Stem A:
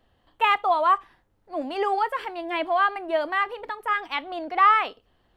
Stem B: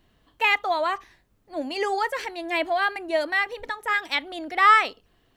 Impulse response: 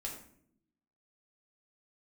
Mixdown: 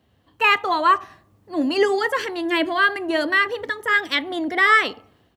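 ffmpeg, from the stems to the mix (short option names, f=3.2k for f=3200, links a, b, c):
-filter_complex "[0:a]lowshelf=f=380:g=11.5,volume=-6dB,asplit=2[a][b];[b]volume=-13dB[c];[1:a]adelay=0.4,volume=-3dB[d];[2:a]atrim=start_sample=2205[e];[c][e]afir=irnorm=-1:irlink=0[f];[a][d][f]amix=inputs=3:normalize=0,highpass=f=74:w=0.5412,highpass=f=74:w=1.3066,dynaudnorm=f=260:g=3:m=6.5dB"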